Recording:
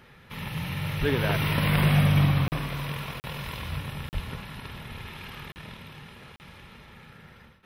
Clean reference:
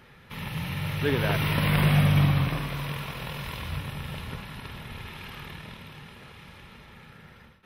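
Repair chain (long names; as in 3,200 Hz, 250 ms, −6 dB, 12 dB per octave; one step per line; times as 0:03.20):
high-pass at the plosives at 0:00.99/0:04.13
repair the gap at 0:02.48/0:03.20/0:04.09/0:05.52/0:06.36, 39 ms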